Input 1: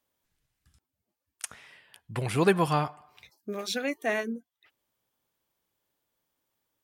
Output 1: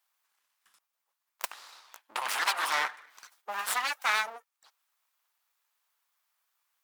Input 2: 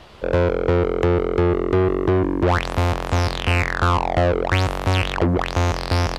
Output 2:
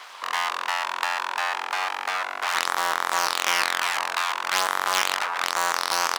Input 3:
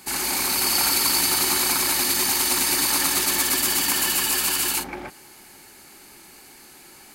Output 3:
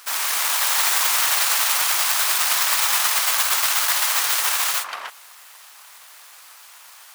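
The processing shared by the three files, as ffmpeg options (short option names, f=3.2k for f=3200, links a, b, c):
-af "afftfilt=real='re*lt(hypot(re,im),0.282)':imag='im*lt(hypot(re,im),0.282)':win_size=1024:overlap=0.75,aeval=exprs='abs(val(0))':c=same,highpass=f=1k:t=q:w=1.7,volume=6dB"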